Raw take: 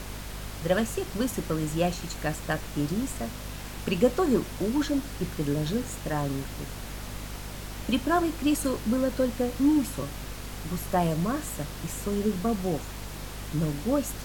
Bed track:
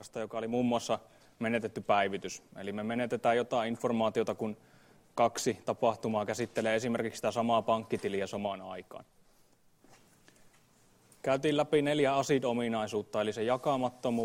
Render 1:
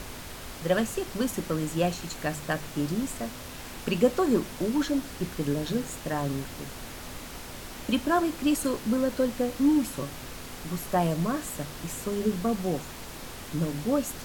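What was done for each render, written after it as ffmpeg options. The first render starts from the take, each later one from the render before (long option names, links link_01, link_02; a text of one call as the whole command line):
ffmpeg -i in.wav -af "bandreject=frequency=50:width_type=h:width=4,bandreject=frequency=100:width_type=h:width=4,bandreject=frequency=150:width_type=h:width=4,bandreject=frequency=200:width_type=h:width=4" out.wav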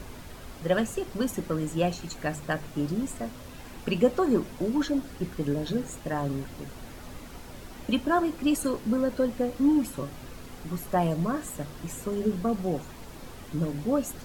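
ffmpeg -i in.wav -af "afftdn=noise_reduction=8:noise_floor=-41" out.wav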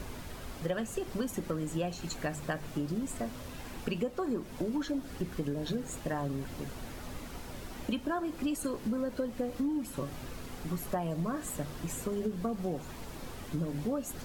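ffmpeg -i in.wav -af "acompressor=threshold=-30dB:ratio=6" out.wav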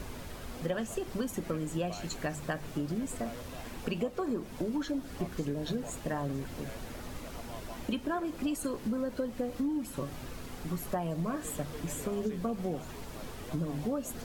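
ffmpeg -i in.wav -i bed.wav -filter_complex "[1:a]volume=-19dB[link_01];[0:a][link_01]amix=inputs=2:normalize=0" out.wav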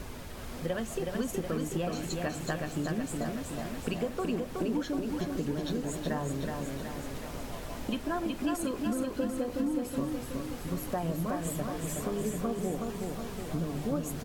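ffmpeg -i in.wav -af "aecho=1:1:371|742|1113|1484|1855|2226|2597|2968:0.631|0.366|0.212|0.123|0.0714|0.0414|0.024|0.0139" out.wav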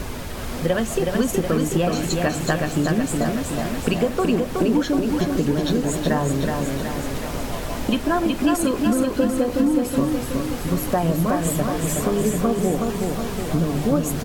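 ffmpeg -i in.wav -af "volume=12dB" out.wav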